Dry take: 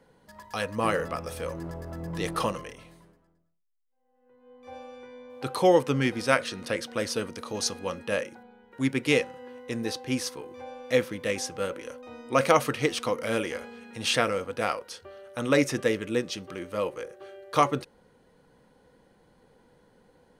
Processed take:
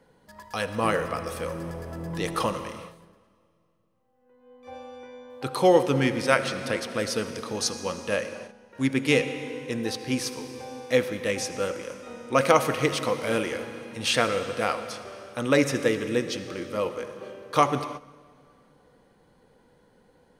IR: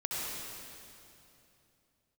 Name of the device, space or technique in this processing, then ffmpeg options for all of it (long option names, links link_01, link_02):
keyed gated reverb: -filter_complex "[0:a]asplit=3[link_01][link_02][link_03];[1:a]atrim=start_sample=2205[link_04];[link_02][link_04]afir=irnorm=-1:irlink=0[link_05];[link_03]apad=whole_len=899236[link_06];[link_05][link_06]sidechaingate=range=-13dB:threshold=-50dB:ratio=16:detection=peak,volume=-13dB[link_07];[link_01][link_07]amix=inputs=2:normalize=0"